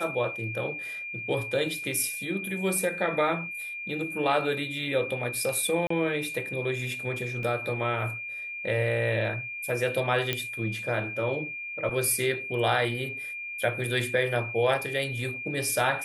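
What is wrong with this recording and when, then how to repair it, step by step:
whistle 2,400 Hz −34 dBFS
0:05.87–0:05.90: drop-out 34 ms
0:07.43: drop-out 2.2 ms
0:10.33: click −11 dBFS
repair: click removal
notch filter 2,400 Hz, Q 30
repair the gap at 0:05.87, 34 ms
repair the gap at 0:07.43, 2.2 ms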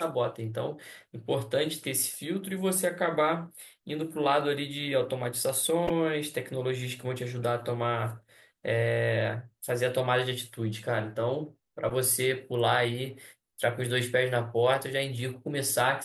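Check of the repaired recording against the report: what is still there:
none of them is left

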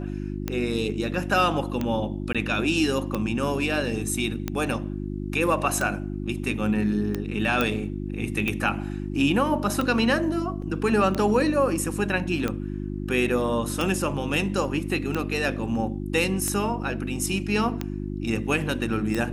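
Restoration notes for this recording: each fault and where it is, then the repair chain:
mains hum 50 Hz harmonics 7 −31 dBFS
scratch tick 45 rpm −13 dBFS
0:02.33–0:02.35: drop-out 16 ms
0:07.61: click −9 dBFS
0:10.62: drop-out 3.5 ms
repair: click removal
hum removal 50 Hz, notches 7
repair the gap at 0:02.33, 16 ms
repair the gap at 0:10.62, 3.5 ms

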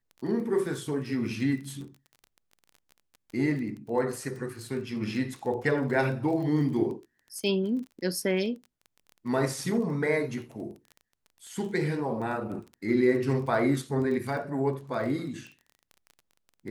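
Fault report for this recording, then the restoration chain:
surface crackle 21 per second −37 dBFS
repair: click removal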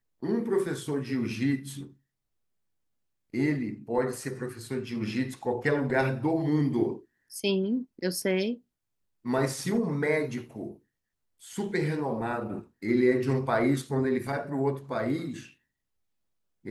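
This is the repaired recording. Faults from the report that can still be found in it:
none of them is left

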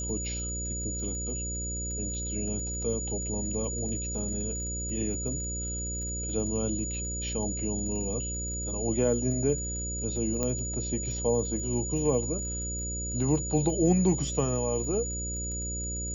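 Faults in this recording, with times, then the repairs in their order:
mains buzz 60 Hz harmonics 10 −36 dBFS
surface crackle 31 per second −39 dBFS
whistle 6,900 Hz −34 dBFS
0:10.43: click −15 dBFS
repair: click removal
hum removal 60 Hz, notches 10
notch filter 6,900 Hz, Q 30

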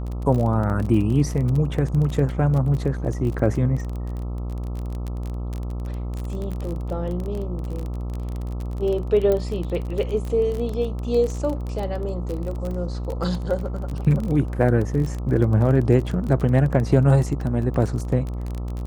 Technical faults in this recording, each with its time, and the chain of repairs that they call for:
mains buzz 60 Hz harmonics 22 −28 dBFS
surface crackle 24 per second −26 dBFS
0:09.32: click −12 dBFS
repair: click removal
hum removal 60 Hz, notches 22

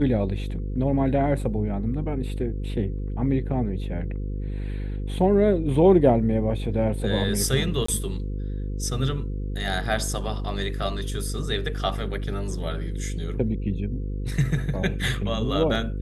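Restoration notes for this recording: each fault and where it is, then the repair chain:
mains buzz 50 Hz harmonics 10 −29 dBFS
0:07.86–0:07.88: drop-out 24 ms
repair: hum removal 50 Hz, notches 10
repair the gap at 0:07.86, 24 ms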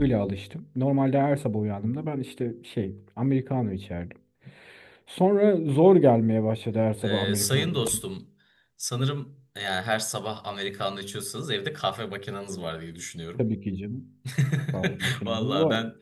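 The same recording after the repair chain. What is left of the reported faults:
none of them is left

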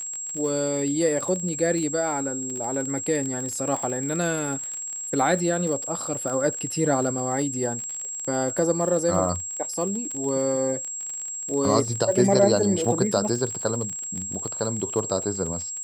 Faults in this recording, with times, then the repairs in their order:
surface crackle 37 per second −29 dBFS
whistle 7,600 Hz −30 dBFS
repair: click removal
notch filter 7,600 Hz, Q 30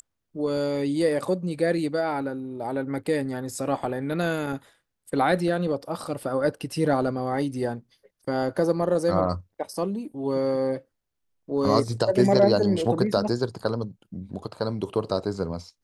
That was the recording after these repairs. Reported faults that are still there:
none of them is left

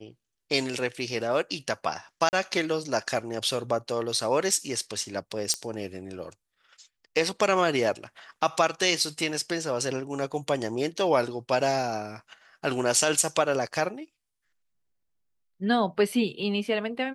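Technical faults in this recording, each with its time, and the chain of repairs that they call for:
0:02.29–0:02.33: drop-out 39 ms
0:05.54: click −12 dBFS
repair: click removal
repair the gap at 0:02.29, 39 ms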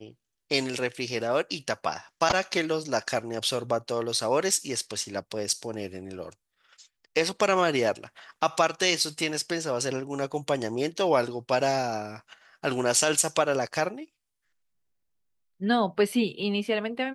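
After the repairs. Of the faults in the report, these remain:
none of them is left

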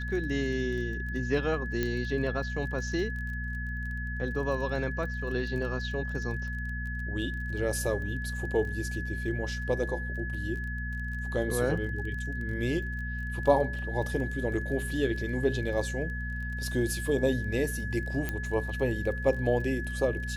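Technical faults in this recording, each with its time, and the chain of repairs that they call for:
surface crackle 22 per second −38 dBFS
mains hum 60 Hz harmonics 4 −35 dBFS
whistle 1,700 Hz −37 dBFS
0:01.83: click −16 dBFS
0:18.29: click −17 dBFS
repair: click removal
notch filter 1,700 Hz, Q 30
hum removal 60 Hz, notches 4

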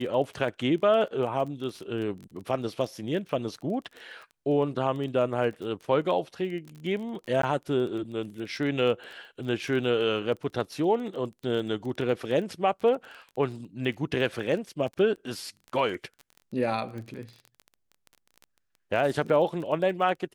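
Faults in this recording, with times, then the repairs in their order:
surface crackle 22 per second −35 dBFS
0:07.42–0:07.43: drop-out 13 ms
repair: click removal
repair the gap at 0:07.42, 13 ms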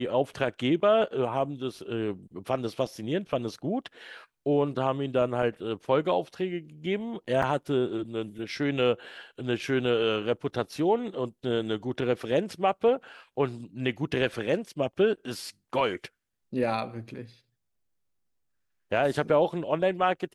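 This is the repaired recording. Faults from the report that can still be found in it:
none of them is left

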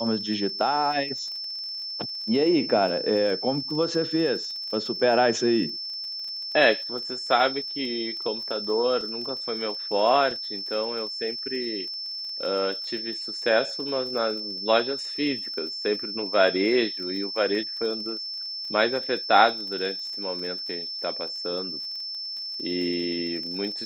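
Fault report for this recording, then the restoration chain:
surface crackle 33 per second −35 dBFS
whistle 5,300 Hz −31 dBFS
0:09.01: drop-out 2.9 ms
0:10.31: drop-out 2.7 ms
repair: click removal
notch filter 5,300 Hz, Q 30
repair the gap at 0:09.01, 2.9 ms
repair the gap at 0:10.31, 2.7 ms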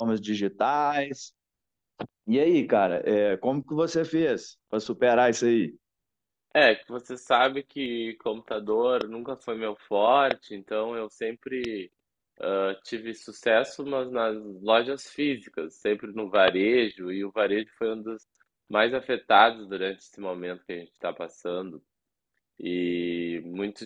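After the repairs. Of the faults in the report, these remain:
none of them is left

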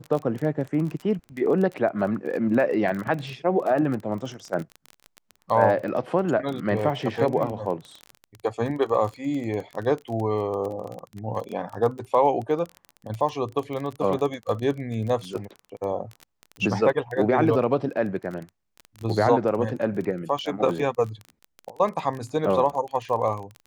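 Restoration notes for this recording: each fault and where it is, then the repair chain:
surface crackle 23 per second −29 dBFS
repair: click removal

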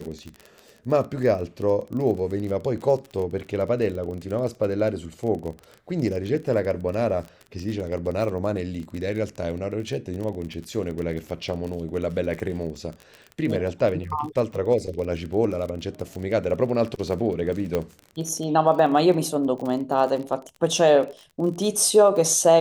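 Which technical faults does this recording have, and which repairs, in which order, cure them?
surface crackle 28 per second −30 dBFS
0:17.75: click −12 dBFS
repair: click removal

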